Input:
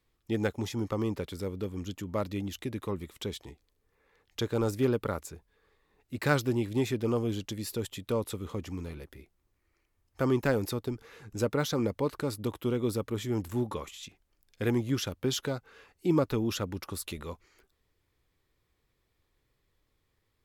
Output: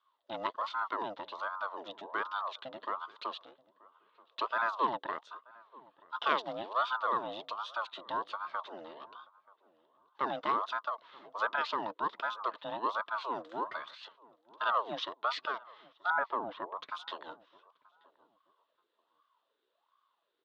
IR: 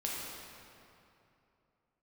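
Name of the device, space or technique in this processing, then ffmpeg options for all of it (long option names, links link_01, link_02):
voice changer toy: -filter_complex "[0:a]aeval=exprs='val(0)*sin(2*PI*770*n/s+770*0.5/1.3*sin(2*PI*1.3*n/s))':channel_layout=same,highpass=460,equalizer=frequency=530:width_type=q:width=4:gain=-3,equalizer=frequency=790:width_type=q:width=4:gain=-6,equalizer=frequency=1100:width_type=q:width=4:gain=6,equalizer=frequency=2300:width_type=q:width=4:gain=-9,equalizer=frequency=3600:width_type=q:width=4:gain=9,lowpass=frequency=3800:width=0.5412,lowpass=frequency=3800:width=1.3066,bandreject=frequency=760:width=12,asettb=1/sr,asplit=3[link_01][link_02][link_03];[link_01]atrim=end=16.104[link_04];[link_02]atrim=start=16.1:end=16.79,asetpts=PTS-STARTPTS,afade=type=in:duration=0.004:curve=qsin,afade=type=out:start_time=0.686:duration=0.004:curve=qsin,lowpass=1500[link_05];[link_03]atrim=start=16.786[link_06];[link_04][link_05]acrossfade=duration=0.004:curve1=hsin:curve2=qsin[link_07];[link_07][link_06]acrossfade=duration=0.004:curve1=qsin:curve2=hsin,asplit=2[link_08][link_09];[link_09]adelay=931,lowpass=frequency=1100:poles=1,volume=-21.5dB,asplit=2[link_10][link_11];[link_11]adelay=931,lowpass=frequency=1100:poles=1,volume=0.29[link_12];[link_08][link_10][link_12]amix=inputs=3:normalize=0"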